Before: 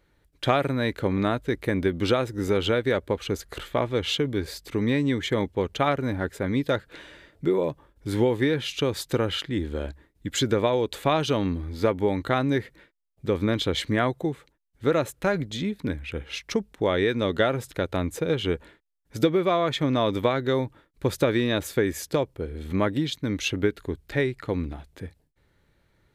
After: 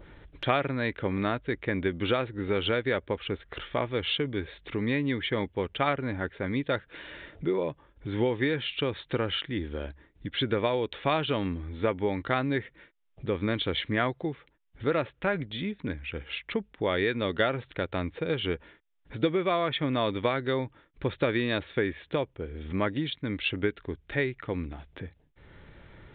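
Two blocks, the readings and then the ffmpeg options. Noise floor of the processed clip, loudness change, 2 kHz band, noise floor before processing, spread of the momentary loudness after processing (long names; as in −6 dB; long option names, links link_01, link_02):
−66 dBFS, −4.0 dB, −0.5 dB, −68 dBFS, 9 LU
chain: -af "adynamicequalizer=threshold=0.00891:dfrequency=2300:dqfactor=0.74:tfrequency=2300:tqfactor=0.74:attack=5:release=100:ratio=0.375:range=2.5:mode=boostabove:tftype=bell,aresample=8000,aresample=44100,acompressor=mode=upward:threshold=-28dB:ratio=2.5,volume=-5dB"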